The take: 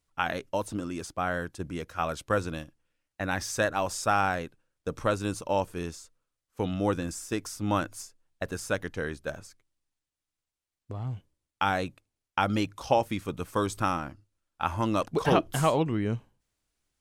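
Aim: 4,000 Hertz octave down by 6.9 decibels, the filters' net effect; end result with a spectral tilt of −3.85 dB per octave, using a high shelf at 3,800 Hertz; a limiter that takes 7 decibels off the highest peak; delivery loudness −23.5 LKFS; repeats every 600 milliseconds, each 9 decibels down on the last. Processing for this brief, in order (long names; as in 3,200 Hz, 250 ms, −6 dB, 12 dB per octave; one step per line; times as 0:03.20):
high-shelf EQ 3,800 Hz −5 dB
parametric band 4,000 Hz −6.5 dB
brickwall limiter −17 dBFS
repeating echo 600 ms, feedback 35%, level −9 dB
level +8.5 dB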